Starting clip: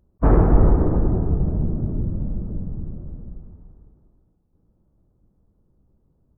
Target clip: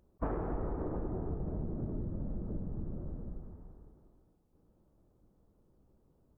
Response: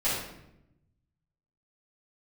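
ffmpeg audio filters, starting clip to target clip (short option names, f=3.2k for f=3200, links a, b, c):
-af "bass=f=250:g=-8,treble=f=4k:g=0,acompressor=threshold=-34dB:ratio=8,volume=1dB"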